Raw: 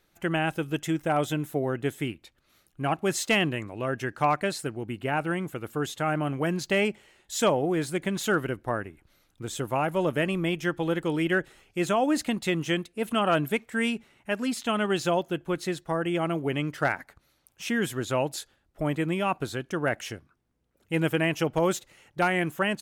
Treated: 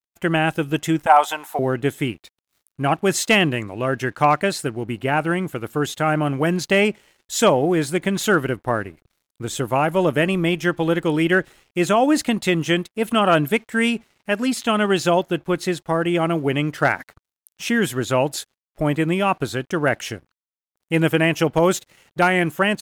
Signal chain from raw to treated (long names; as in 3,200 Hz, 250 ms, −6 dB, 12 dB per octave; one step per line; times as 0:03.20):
0:01.06–0:01.59: high-pass with resonance 870 Hz, resonance Q 4.9
dead-zone distortion −59.5 dBFS
level +7.5 dB